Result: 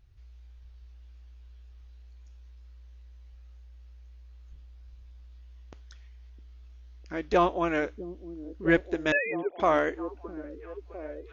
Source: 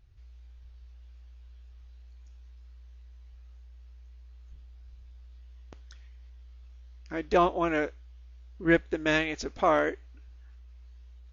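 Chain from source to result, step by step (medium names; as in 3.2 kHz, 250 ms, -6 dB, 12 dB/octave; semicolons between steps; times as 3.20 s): 9.12–9.60 s: formants replaced by sine waves; repeats whose band climbs or falls 657 ms, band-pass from 250 Hz, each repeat 0.7 oct, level -8.5 dB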